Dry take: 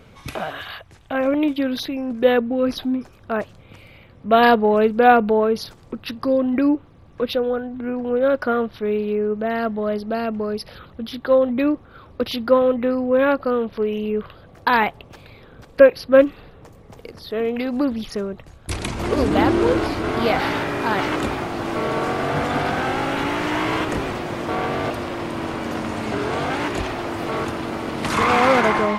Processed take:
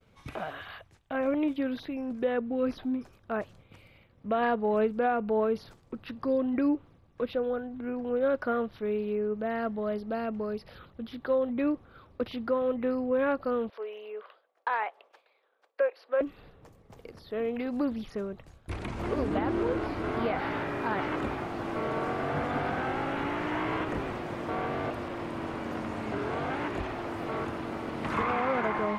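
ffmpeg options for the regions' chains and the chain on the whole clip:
-filter_complex "[0:a]asettb=1/sr,asplit=3[s0][s1][s2];[s0]atrim=end=13.704[s3];[s1]atrim=start=13.7:end=16.21,asetpts=PTS-STARTPTS,afade=t=in:d=0.004:c=qsin,afade=t=out:st=2.506:d=0.004:c=qsin,highpass=f=500:w=0.5412,highpass=f=500:w=1.3066,highshelf=f=4800:g=-11.5[s4];[s2]atrim=start=16.206[s5];[s3][s4]acrossfade=d=0.004:c1=hsin:c2=qsin[s6];[s6][s5]acrossfade=d=0.004:c1=qsin:c2=hsin,acrossover=split=2700[s7][s8];[s8]acompressor=threshold=0.00447:ratio=4:attack=1:release=60[s9];[s7][s9]amix=inputs=2:normalize=0,agate=range=0.0224:threshold=0.00891:ratio=3:detection=peak,alimiter=limit=0.316:level=0:latency=1:release=300,volume=0.376"

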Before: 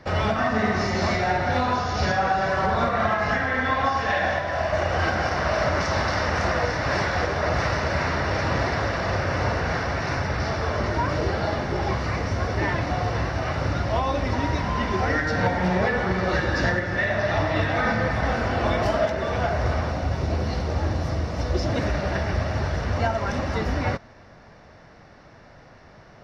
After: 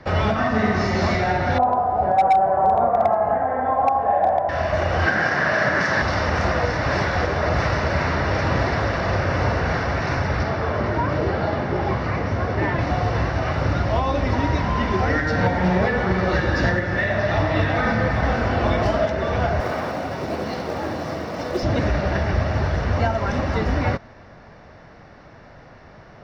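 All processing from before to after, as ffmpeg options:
-filter_complex "[0:a]asettb=1/sr,asplit=3[s0][s1][s2];[s0]atrim=end=1.584[s3];[s1]atrim=start=1.58:end=4.49,asetpts=PTS-STARTPTS,afade=t=in:d=0.004:c=qsin,afade=t=out:st=2.906:d=0.004:c=qsin,lowpass=f=760:t=q:w=4,lowshelf=f=330:g=-11,asoftclip=type=hard:threshold=0.335[s4];[s2]atrim=start=4.486[s5];[s3][s4]acrossfade=d=0.004:c1=hsin:c2=qsin[s6];[s6][s5]acrossfade=d=0.004:c1=qsin:c2=hsin,asettb=1/sr,asplit=3[s7][s8][s9];[s7]atrim=end=5.064[s10];[s8]atrim=start=5.06:end=6.02,asetpts=PTS-STARTPTS,afade=t=in:d=0.004:c=qsin,afade=t=out:st=0.956:d=0.004:c=qsin,highpass=f=120:w=0.5412,highpass=f=120:w=1.3066,equalizer=f=1700:t=o:w=0.37:g=12.5[s11];[s9]atrim=start=6.016[s12];[s10][s11]acrossfade=d=0.004:c1=hsin:c2=qsin[s13];[s13][s12]acrossfade=d=0.004:c1=qsin:c2=hsin,asettb=1/sr,asplit=3[s14][s15][s16];[s14]atrim=end=10.434[s17];[s15]atrim=start=10.43:end=12.79,asetpts=PTS-STARTPTS,afade=t=in:d=0.004:c=qsin,afade=t=out:st=2.356:d=0.004:c=qsin,highpass=79,aemphasis=mode=reproduction:type=50kf[s18];[s16]atrim=start=12.786[s19];[s17][s18]acrossfade=d=0.004:c1=hsin:c2=qsin[s20];[s20][s19]acrossfade=d=0.004:c1=qsin:c2=hsin,asettb=1/sr,asplit=3[s21][s22][s23];[s21]atrim=end=19.604[s24];[s22]atrim=start=19.6:end=21.63,asetpts=PTS-STARTPTS,afade=t=in:d=0.004:c=qsin,afade=t=out:st=2.026:d=0.004:c=qsin,highpass=210,acrusher=bits=5:mode=log:mix=0:aa=0.000001[s25];[s23]atrim=start=21.626[s26];[s24][s25]acrossfade=d=0.004:c1=hsin:c2=qsin[s27];[s27][s26]acrossfade=d=0.004:c1=qsin:c2=hsin,acrossover=split=410|3000[s28][s29][s30];[s29]acompressor=threshold=0.0398:ratio=1.5[s31];[s28][s31][s30]amix=inputs=3:normalize=0,highshelf=f=6400:g=-11.5,volume=1.58"

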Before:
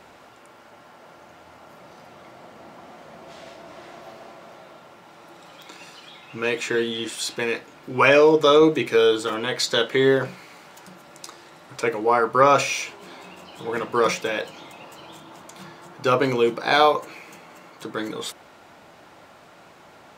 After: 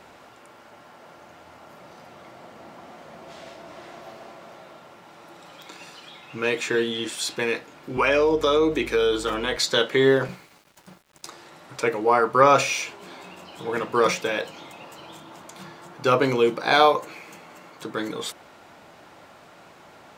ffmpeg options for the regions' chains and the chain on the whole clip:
-filter_complex "[0:a]asettb=1/sr,asplit=3[s0][s1][s2];[s0]atrim=end=7.974[s3];[s1]atrim=start=7.97:end=9.57,asetpts=PTS-STARTPTS,afade=t=in:d=0.004:c=qsin,afade=t=out:st=1.596:d=0.004:c=qsin,highpass=f=170:w=0.5412,highpass=f=170:w=1.3066,acompressor=threshold=0.126:ratio=2.5:attack=3.2:release=140:knee=1:detection=peak,aeval=exprs='val(0)+0.00891*(sin(2*PI*50*n/s)+sin(2*PI*2*50*n/s)/2+sin(2*PI*3*50*n/s)/3+sin(2*PI*4*50*n/s)/4+sin(2*PI*5*50*n/s)/5)':c=same[s4];[s2]atrim=start=9.566[s5];[s3][s4]acrossfade=d=0.004:c1=hsin:c2=qsin[s6];[s6][s5]acrossfade=d=0.004:c1=qsin:c2=hsin,asettb=1/sr,asplit=3[s7][s8][s9];[s7]atrim=end=10.284[s10];[s8]atrim=start=10.28:end=11.27,asetpts=PTS-STARTPTS,afade=t=in:d=0.004:c=qsin,afade=t=out:st=0.986:d=0.004:c=qsin,agate=range=0.0224:threshold=0.01:ratio=3:release=100:detection=peak,lowshelf=f=160:g=8.5,aeval=exprs='val(0)*gte(abs(val(0)),0.00251)':c=same[s11];[s9]atrim=start=11.266[s12];[s10][s11]acrossfade=d=0.004:c1=hsin:c2=qsin[s13];[s13][s12]acrossfade=d=0.004:c1=qsin:c2=hsin"

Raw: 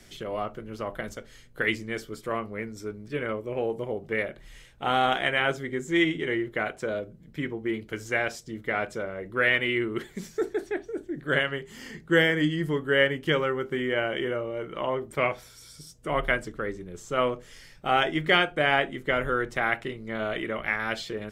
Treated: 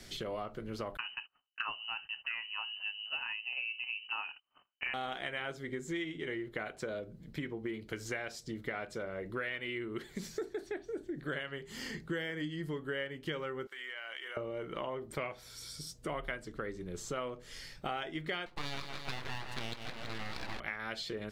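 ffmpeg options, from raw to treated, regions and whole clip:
-filter_complex "[0:a]asettb=1/sr,asplit=3[s0][s1][s2];[s0]atrim=end=0.974[s3];[s1]atrim=start=0.97:end=4.94,asetpts=PTS-STARTPTS,afade=t=in:d=0.004:c=qsin,afade=t=out:st=3.966:d=0.004:c=qsin,highpass=f=56:w=0.5412,highpass=f=56:w=1.3066,agate=range=0.02:threshold=0.00316:ratio=16:release=100:detection=peak,lowpass=f=2600:t=q:w=0.5098,lowpass=f=2600:t=q:w=0.6013,lowpass=f=2600:t=q:w=0.9,lowpass=f=2600:t=q:w=2.563,afreqshift=-3100[s4];[s2]atrim=start=4.936[s5];[s3][s4]acrossfade=d=0.004:c1=hsin:c2=qsin[s6];[s6][s5]acrossfade=d=0.004:c1=qsin:c2=hsin,asettb=1/sr,asplit=3[s7][s8][s9];[s7]atrim=end=13.674[s10];[s8]atrim=start=13.67:end=14.37,asetpts=PTS-STARTPTS,afade=t=in:d=0.004:c=qsin,afade=t=out:st=0.696:d=0.004:c=qsin,highpass=1300,acompressor=threshold=0.0112:ratio=10:attack=3.2:release=140:knee=1:detection=peak[s11];[s9]atrim=start=14.366[s12];[s10][s11]acrossfade=d=0.004:c1=hsin:c2=qsin[s13];[s13][s12]acrossfade=d=0.004:c1=qsin:c2=hsin,asettb=1/sr,asplit=3[s14][s15][s16];[s14]atrim=end=18.464[s17];[s15]atrim=start=18.46:end=20.6,asetpts=PTS-STARTPTS,afade=t=in:d=0.004:c=qsin,afade=t=out:st=2.136:d=0.004:c=qsin,equalizer=f=1200:w=4.7:g=7,aecho=1:1:164|328|492|656|820|984:0.355|0.181|0.0923|0.0471|0.024|0.0122,atrim=end_sample=94374,aeval=exprs='abs(val(0))':c=same[s18];[s16]atrim=start=20.596[s19];[s17][s18]acrossfade=d=0.004:c1=hsin:c2=qsin[s20];[s20][s19]acrossfade=d=0.004:c1=qsin:c2=hsin,equalizer=f=4300:w=2.7:g=6.5,acompressor=threshold=0.0158:ratio=6"

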